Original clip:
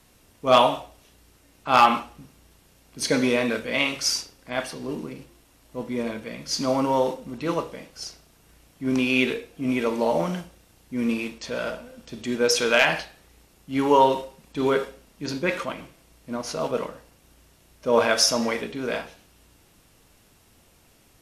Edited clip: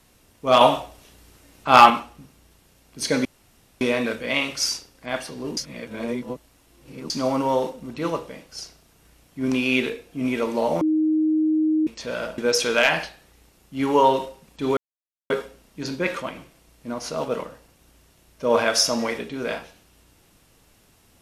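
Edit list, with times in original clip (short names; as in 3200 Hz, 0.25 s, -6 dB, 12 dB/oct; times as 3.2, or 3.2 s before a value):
0.61–1.9 gain +5 dB
3.25 insert room tone 0.56 s
5.01–6.54 reverse
10.25–11.31 bleep 312 Hz -17 dBFS
11.82–12.34 cut
14.73 insert silence 0.53 s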